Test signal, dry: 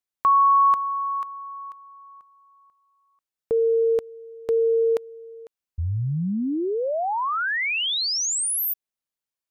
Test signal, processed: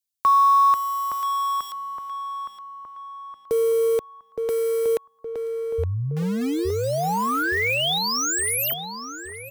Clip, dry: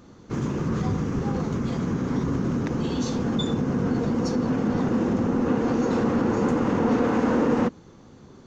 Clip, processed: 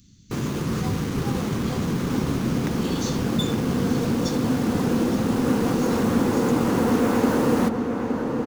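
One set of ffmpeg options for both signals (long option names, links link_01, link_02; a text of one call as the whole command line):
ffmpeg -i in.wav -filter_complex "[0:a]highshelf=frequency=4100:gain=7,acrossover=split=220|2500[link_01][link_02][link_03];[link_02]acrusher=bits=5:mix=0:aa=0.000001[link_04];[link_03]asoftclip=type=tanh:threshold=-23.5dB[link_05];[link_01][link_04][link_05]amix=inputs=3:normalize=0,asplit=2[link_06][link_07];[link_07]adelay=867,lowpass=frequency=2000:poles=1,volume=-5dB,asplit=2[link_08][link_09];[link_09]adelay=867,lowpass=frequency=2000:poles=1,volume=0.52,asplit=2[link_10][link_11];[link_11]adelay=867,lowpass=frequency=2000:poles=1,volume=0.52,asplit=2[link_12][link_13];[link_13]adelay=867,lowpass=frequency=2000:poles=1,volume=0.52,asplit=2[link_14][link_15];[link_15]adelay=867,lowpass=frequency=2000:poles=1,volume=0.52,asplit=2[link_16][link_17];[link_17]adelay=867,lowpass=frequency=2000:poles=1,volume=0.52,asplit=2[link_18][link_19];[link_19]adelay=867,lowpass=frequency=2000:poles=1,volume=0.52[link_20];[link_06][link_08][link_10][link_12][link_14][link_16][link_18][link_20]amix=inputs=8:normalize=0" out.wav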